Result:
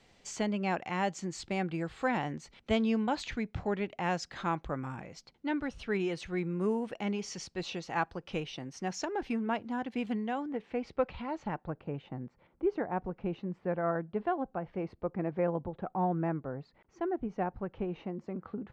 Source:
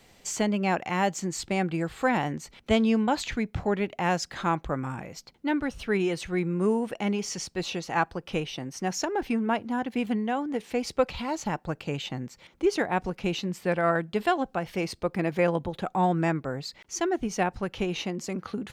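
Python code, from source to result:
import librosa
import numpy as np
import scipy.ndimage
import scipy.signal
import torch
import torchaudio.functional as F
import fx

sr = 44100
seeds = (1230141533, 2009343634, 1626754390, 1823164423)

y = fx.lowpass(x, sr, hz=fx.steps((0.0, 6300.0), (10.48, 2200.0), (11.7, 1200.0)), slope=12)
y = y * librosa.db_to_amplitude(-6.0)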